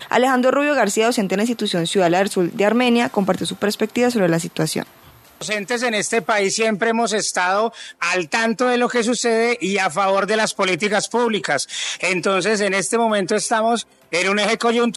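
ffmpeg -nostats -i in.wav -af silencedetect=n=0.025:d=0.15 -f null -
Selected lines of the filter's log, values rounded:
silence_start: 4.83
silence_end: 5.41 | silence_duration: 0.58
silence_start: 13.82
silence_end: 14.12 | silence_duration: 0.30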